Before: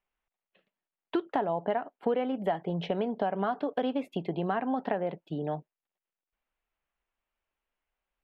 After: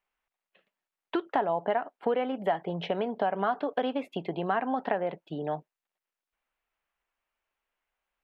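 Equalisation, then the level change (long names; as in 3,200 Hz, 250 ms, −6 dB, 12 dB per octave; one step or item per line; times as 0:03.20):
tilt shelving filter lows −3.5 dB, about 1,200 Hz
low-shelf EQ 350 Hz −7 dB
high-shelf EQ 3,000 Hz −11.5 dB
+6.0 dB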